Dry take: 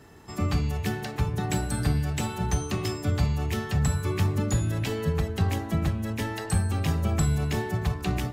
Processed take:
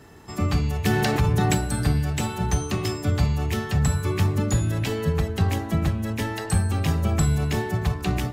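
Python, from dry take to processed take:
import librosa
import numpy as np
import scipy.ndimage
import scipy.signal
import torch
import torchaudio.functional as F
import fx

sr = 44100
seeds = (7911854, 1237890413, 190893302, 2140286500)

y = fx.env_flatten(x, sr, amount_pct=70, at=(0.85, 1.55))
y = F.gain(torch.from_numpy(y), 3.0).numpy()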